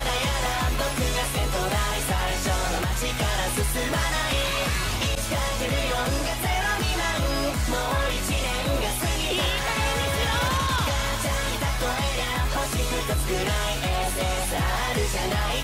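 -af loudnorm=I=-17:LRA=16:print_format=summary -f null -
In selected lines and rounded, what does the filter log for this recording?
Input Integrated:    -24.9 LUFS
Input True Peak:     -14.9 dBTP
Input LRA:             1.0 LU
Input Threshold:     -34.9 LUFS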